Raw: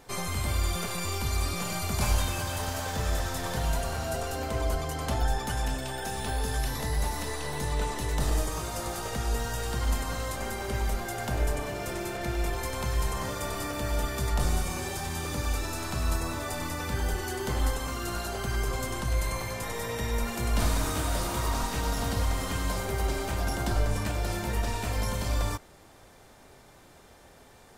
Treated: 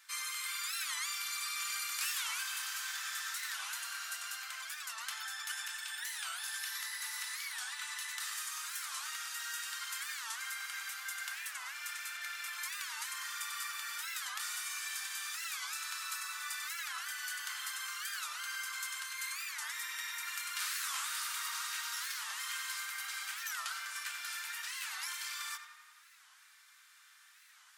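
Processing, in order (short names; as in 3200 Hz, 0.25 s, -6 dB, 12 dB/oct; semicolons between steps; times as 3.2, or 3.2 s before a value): steep high-pass 1300 Hz 36 dB/oct; on a send: tape echo 90 ms, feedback 75%, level -8 dB, low-pass 3300 Hz; on the sum: record warp 45 rpm, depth 250 cents; gain -2 dB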